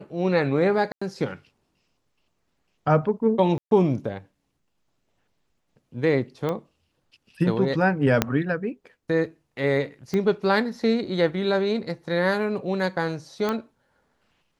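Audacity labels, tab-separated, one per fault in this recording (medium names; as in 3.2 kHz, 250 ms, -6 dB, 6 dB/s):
0.920000	1.010000	dropout 95 ms
3.580000	3.710000	dropout 132 ms
6.490000	6.490000	pop -16 dBFS
8.220000	8.220000	pop -4 dBFS
10.140000	10.140000	pop -15 dBFS
13.490000	13.490000	pop -13 dBFS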